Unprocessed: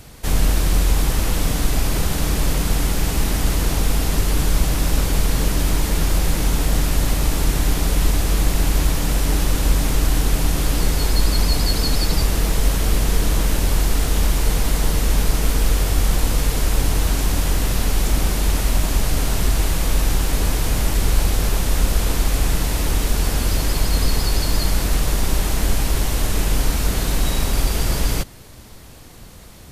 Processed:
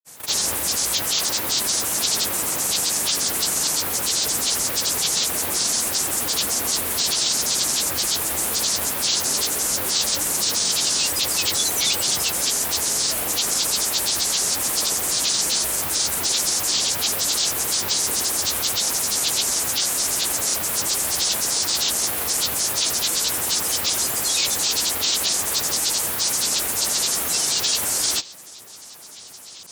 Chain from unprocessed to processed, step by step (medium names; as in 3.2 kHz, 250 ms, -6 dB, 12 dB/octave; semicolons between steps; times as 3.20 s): resonant high shelf 5.2 kHz +12.5 dB, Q 1.5; granulator 100 ms, grains 23 per s, pitch spread up and down by 12 st; frequency weighting A